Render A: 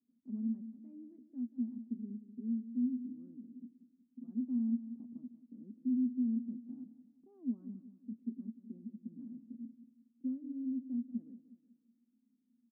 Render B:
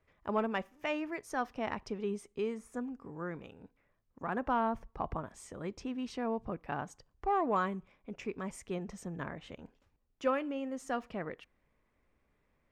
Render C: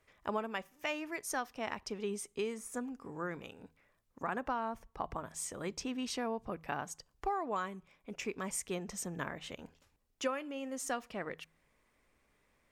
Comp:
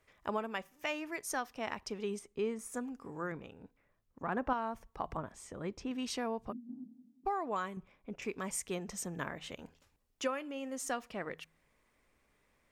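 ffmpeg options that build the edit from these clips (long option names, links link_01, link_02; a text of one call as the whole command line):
ffmpeg -i take0.wav -i take1.wav -i take2.wav -filter_complex "[1:a]asplit=4[link_01][link_02][link_03][link_04];[2:a]asplit=6[link_05][link_06][link_07][link_08][link_09][link_10];[link_05]atrim=end=2.192[link_11];[link_01]atrim=start=2.188:end=2.592[link_12];[link_06]atrim=start=2.588:end=3.322[link_13];[link_02]atrim=start=3.318:end=4.532[link_14];[link_07]atrim=start=4.528:end=5.172[link_15];[link_03]atrim=start=5.168:end=5.912[link_16];[link_08]atrim=start=5.908:end=6.53[link_17];[0:a]atrim=start=6.51:end=7.27[link_18];[link_09]atrim=start=7.25:end=7.772[link_19];[link_04]atrim=start=7.768:end=8.222[link_20];[link_10]atrim=start=8.218[link_21];[link_11][link_12]acrossfade=duration=0.004:curve1=hsin:curve2=hsin[link_22];[link_22][link_13]acrossfade=duration=0.004:curve1=hsin:curve2=hsin[link_23];[link_23][link_14]acrossfade=duration=0.004:curve1=hsin:curve2=hsin[link_24];[link_24][link_15]acrossfade=duration=0.004:curve1=hsin:curve2=hsin[link_25];[link_25][link_16]acrossfade=duration=0.004:curve1=hsin:curve2=hsin[link_26];[link_26][link_17]acrossfade=duration=0.004:curve1=hsin:curve2=hsin[link_27];[link_27][link_18]acrossfade=duration=0.02:curve1=tri:curve2=tri[link_28];[link_28][link_19]acrossfade=duration=0.02:curve1=tri:curve2=tri[link_29];[link_29][link_20]acrossfade=duration=0.004:curve1=hsin:curve2=hsin[link_30];[link_30][link_21]acrossfade=duration=0.004:curve1=hsin:curve2=hsin" out.wav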